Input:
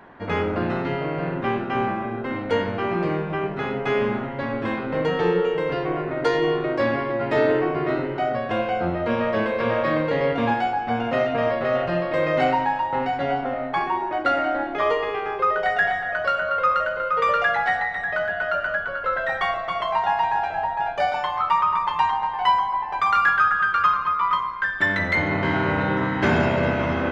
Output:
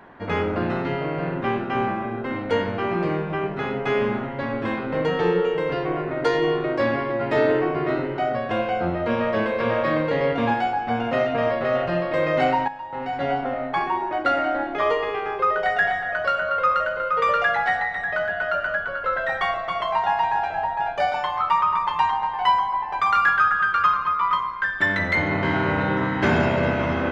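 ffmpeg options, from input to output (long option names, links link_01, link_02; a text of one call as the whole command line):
ffmpeg -i in.wav -filter_complex "[0:a]asplit=2[link_01][link_02];[link_01]atrim=end=12.68,asetpts=PTS-STARTPTS,afade=type=out:start_time=12.676:duration=0.004:curve=hsin:silence=0.251189[link_03];[link_02]atrim=start=12.68,asetpts=PTS-STARTPTS,afade=type=in:duration=0.56:curve=qua:silence=0.251189[link_04];[link_03][link_04]concat=n=2:v=0:a=1" out.wav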